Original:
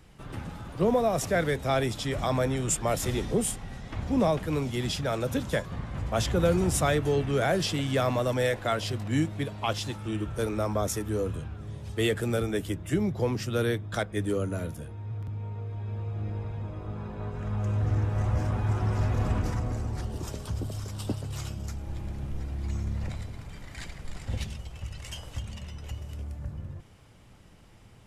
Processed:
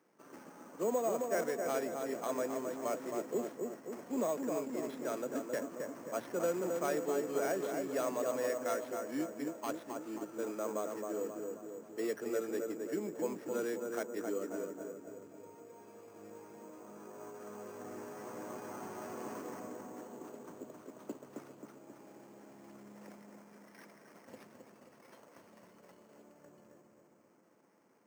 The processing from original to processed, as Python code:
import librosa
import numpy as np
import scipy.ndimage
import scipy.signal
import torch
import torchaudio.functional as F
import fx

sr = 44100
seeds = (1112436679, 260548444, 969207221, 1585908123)

y = scipy.signal.medfilt(x, 15)
y = scipy.signal.sosfilt(scipy.signal.butter(4, 260.0, 'highpass', fs=sr, output='sos'), y)
y = fx.notch(y, sr, hz=780.0, q=12.0)
y = fx.echo_filtered(y, sr, ms=267, feedback_pct=59, hz=1400.0, wet_db=-3.5)
y = np.repeat(scipy.signal.resample_poly(y, 1, 6), 6)[:len(y)]
y = F.gain(torch.from_numpy(y), -8.0).numpy()